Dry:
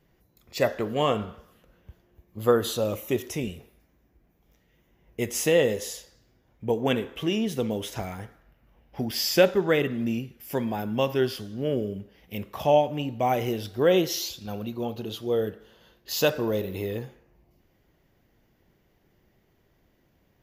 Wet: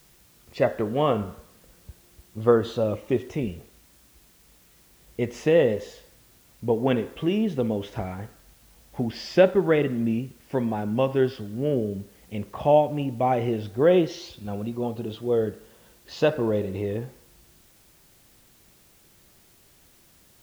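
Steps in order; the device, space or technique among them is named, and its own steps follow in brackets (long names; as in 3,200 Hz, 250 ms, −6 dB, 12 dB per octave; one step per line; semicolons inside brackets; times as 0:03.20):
cassette deck with a dirty head (head-to-tape spacing loss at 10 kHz 28 dB; tape wow and flutter 23 cents; white noise bed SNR 32 dB)
level +3.5 dB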